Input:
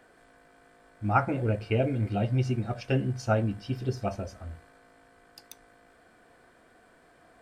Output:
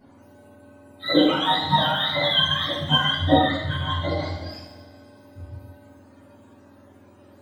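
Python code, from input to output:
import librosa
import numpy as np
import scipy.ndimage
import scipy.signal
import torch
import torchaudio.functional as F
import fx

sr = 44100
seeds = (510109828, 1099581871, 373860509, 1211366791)

y = fx.octave_mirror(x, sr, pivot_hz=640.0)
y = fx.tilt_eq(y, sr, slope=-2.5, at=(3.16, 4.51))
y = fx.rev_double_slope(y, sr, seeds[0], early_s=0.76, late_s=2.6, knee_db=-18, drr_db=-9.0)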